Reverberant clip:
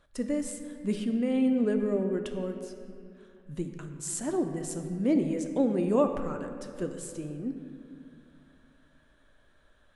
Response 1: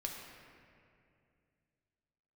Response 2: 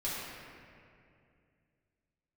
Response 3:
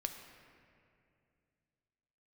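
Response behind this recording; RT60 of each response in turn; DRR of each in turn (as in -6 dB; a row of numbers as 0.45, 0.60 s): 3; 2.5, 2.4, 2.5 s; 0.0, -9.0, 5.0 dB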